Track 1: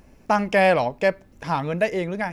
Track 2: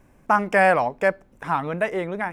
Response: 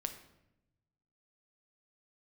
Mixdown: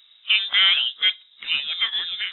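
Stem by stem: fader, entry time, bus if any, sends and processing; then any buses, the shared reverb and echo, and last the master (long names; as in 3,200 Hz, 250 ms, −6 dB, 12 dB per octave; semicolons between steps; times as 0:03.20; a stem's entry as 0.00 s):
−12.0 dB, 0.00 s, send −15 dB, random phases in long frames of 100 ms
−1.0 dB, 0.00 s, no send, no processing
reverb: on, RT60 0.85 s, pre-delay 6 ms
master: voice inversion scrambler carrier 3,800 Hz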